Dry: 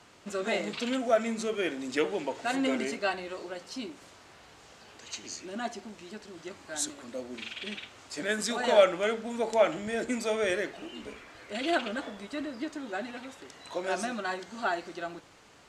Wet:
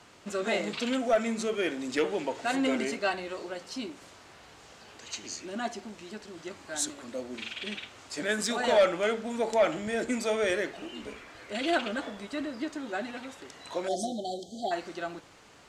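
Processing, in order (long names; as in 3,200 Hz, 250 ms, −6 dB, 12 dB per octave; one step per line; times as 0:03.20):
time-frequency box erased 0:13.88–0:14.71, 830–3,000 Hz
soft clipping −16.5 dBFS, distortion −16 dB
level +1.5 dB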